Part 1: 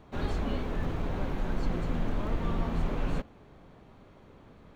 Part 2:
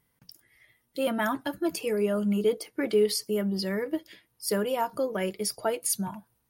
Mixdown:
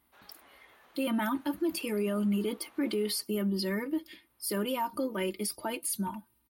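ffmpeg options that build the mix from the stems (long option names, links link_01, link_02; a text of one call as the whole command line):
ffmpeg -i stem1.wav -i stem2.wav -filter_complex "[0:a]highpass=940,volume=-15.5dB[link_01];[1:a]equalizer=frequency=100:width_type=o:width=0.67:gain=-6,equalizer=frequency=630:width_type=o:width=0.67:gain=-11,equalizer=frequency=1600:width_type=o:width=0.67:gain=-5,equalizer=frequency=6300:width_type=o:width=0.67:gain=-10,aecho=1:1:3.3:0.73,volume=1.5dB[link_02];[link_01][link_02]amix=inputs=2:normalize=0,highpass=41,alimiter=limit=-23dB:level=0:latency=1:release=22" out.wav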